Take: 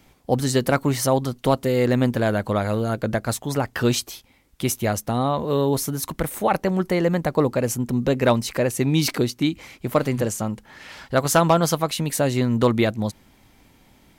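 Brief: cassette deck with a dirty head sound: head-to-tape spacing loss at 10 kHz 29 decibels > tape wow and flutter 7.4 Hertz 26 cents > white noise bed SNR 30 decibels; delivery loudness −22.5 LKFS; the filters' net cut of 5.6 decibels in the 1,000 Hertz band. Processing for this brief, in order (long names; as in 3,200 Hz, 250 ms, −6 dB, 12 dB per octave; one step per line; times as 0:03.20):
head-to-tape spacing loss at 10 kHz 29 dB
parametric band 1,000 Hz −4 dB
tape wow and flutter 7.4 Hz 26 cents
white noise bed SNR 30 dB
level +2 dB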